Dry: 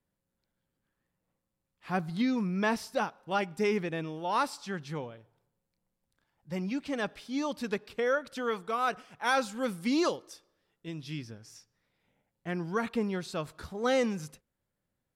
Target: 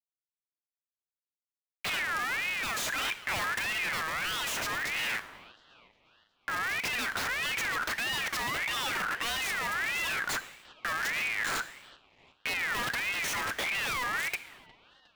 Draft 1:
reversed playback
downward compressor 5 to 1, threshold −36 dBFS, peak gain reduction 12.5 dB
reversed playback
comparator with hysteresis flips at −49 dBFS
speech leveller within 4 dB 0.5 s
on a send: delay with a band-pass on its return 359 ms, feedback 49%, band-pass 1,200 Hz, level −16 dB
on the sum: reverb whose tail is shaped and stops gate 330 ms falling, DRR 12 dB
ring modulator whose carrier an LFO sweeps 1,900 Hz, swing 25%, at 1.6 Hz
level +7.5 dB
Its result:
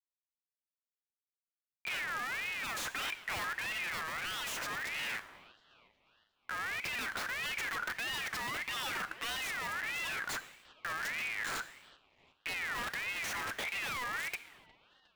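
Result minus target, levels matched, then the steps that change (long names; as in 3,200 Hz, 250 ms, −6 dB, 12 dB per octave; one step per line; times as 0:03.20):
downward compressor: peak gain reduction +7 dB
change: downward compressor 5 to 1, threshold −27.5 dBFS, peak gain reduction 6 dB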